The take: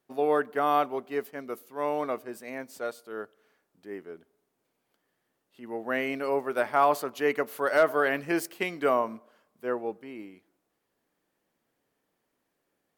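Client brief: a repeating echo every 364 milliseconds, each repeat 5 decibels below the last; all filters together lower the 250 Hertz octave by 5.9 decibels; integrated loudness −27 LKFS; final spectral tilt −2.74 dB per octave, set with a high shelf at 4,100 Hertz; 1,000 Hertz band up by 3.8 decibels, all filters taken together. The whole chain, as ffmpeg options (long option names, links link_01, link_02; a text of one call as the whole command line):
ffmpeg -i in.wav -af "equalizer=frequency=250:width_type=o:gain=-8.5,equalizer=frequency=1000:width_type=o:gain=5,highshelf=frequency=4100:gain=8.5,aecho=1:1:364|728|1092|1456|1820|2184|2548:0.562|0.315|0.176|0.0988|0.0553|0.031|0.0173,volume=-1.5dB" out.wav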